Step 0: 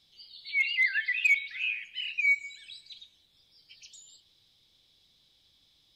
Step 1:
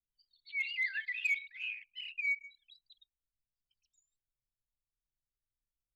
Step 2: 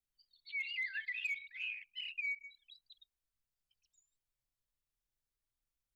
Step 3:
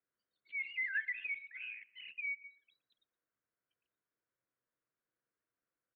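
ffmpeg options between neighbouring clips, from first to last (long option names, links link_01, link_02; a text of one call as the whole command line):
ffmpeg -i in.wav -af "anlmdn=0.631,volume=-8.5dB" out.wav
ffmpeg -i in.wav -filter_complex "[0:a]acrossover=split=360[link_01][link_02];[link_02]acompressor=threshold=-39dB:ratio=3[link_03];[link_01][link_03]amix=inputs=2:normalize=0,volume=1dB" out.wav
ffmpeg -i in.wav -af "asuperstop=centerf=840:order=4:qfactor=6.7,highpass=180,equalizer=frequency=320:width_type=q:width=4:gain=5,equalizer=frequency=490:width_type=q:width=4:gain=6,equalizer=frequency=1500:width_type=q:width=4:gain=5,lowpass=frequency=2000:width=0.5412,lowpass=frequency=2000:width=1.3066,aecho=1:1:117|234:0.0708|0.0255,volume=4.5dB" out.wav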